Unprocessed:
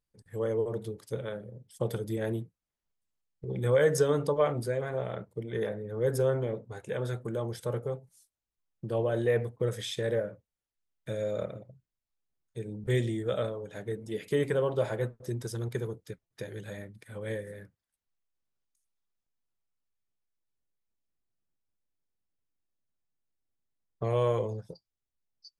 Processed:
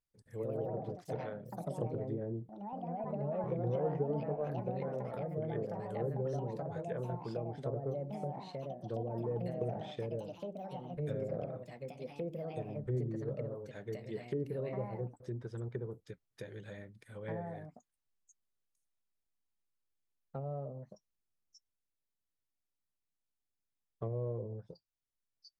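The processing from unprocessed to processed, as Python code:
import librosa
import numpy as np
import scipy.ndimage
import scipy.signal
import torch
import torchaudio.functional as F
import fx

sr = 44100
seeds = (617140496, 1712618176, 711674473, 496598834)

y = fx.env_lowpass_down(x, sr, base_hz=390.0, full_db=-26.5)
y = fx.echo_pitch(y, sr, ms=149, semitones=3, count=3, db_per_echo=-3.0)
y = y * 10.0 ** (-6.5 / 20.0)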